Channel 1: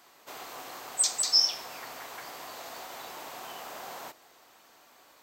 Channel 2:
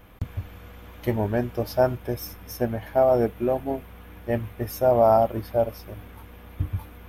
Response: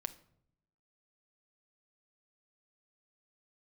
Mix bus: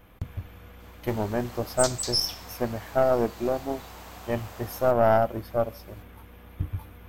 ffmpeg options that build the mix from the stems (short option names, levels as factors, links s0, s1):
-filter_complex "[0:a]adelay=800,volume=1.06[s0];[1:a]volume=0.841,asplit=2[s1][s2];[s2]volume=0.355[s3];[2:a]atrim=start_sample=2205[s4];[s3][s4]afir=irnorm=-1:irlink=0[s5];[s0][s1][s5]amix=inputs=3:normalize=0,aeval=exprs='(tanh(3.16*val(0)+0.7)-tanh(0.7))/3.16':c=same"